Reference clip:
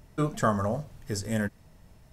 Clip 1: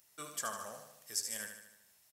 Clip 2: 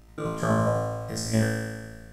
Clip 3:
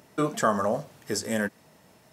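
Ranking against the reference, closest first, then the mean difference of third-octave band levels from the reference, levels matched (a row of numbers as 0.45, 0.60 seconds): 3, 2, 1; 4.0, 8.5, 12.0 decibels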